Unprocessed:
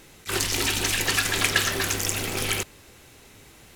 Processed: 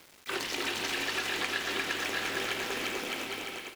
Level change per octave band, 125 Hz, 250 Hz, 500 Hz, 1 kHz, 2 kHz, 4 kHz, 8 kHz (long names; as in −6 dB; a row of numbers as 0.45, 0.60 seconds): −18.0, −5.5, −4.0, −4.0, −5.0, −6.5, −14.0 decibels